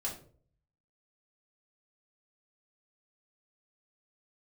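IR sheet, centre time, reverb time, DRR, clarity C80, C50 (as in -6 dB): 23 ms, 0.50 s, -4.0 dB, 13.0 dB, 8.0 dB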